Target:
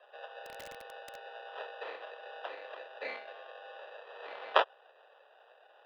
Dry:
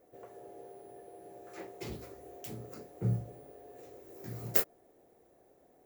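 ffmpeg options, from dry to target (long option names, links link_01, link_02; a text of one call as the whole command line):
ffmpeg -i in.wav -filter_complex "[0:a]acrusher=samples=21:mix=1:aa=0.000001,highpass=frequency=450:width_type=q:width=0.5412,highpass=frequency=450:width_type=q:width=1.307,lowpass=frequency=3600:width_type=q:width=0.5176,lowpass=frequency=3600:width_type=q:width=0.7071,lowpass=frequency=3600:width_type=q:width=1.932,afreqshift=88,asplit=3[link_01][link_02][link_03];[link_01]afade=type=out:start_time=0.45:duration=0.02[link_04];[link_02]aeval=exprs='(mod(168*val(0)+1,2)-1)/168':channel_layout=same,afade=type=in:start_time=0.45:duration=0.02,afade=type=out:start_time=1.25:duration=0.02[link_05];[link_03]afade=type=in:start_time=1.25:duration=0.02[link_06];[link_04][link_05][link_06]amix=inputs=3:normalize=0,volume=6dB" out.wav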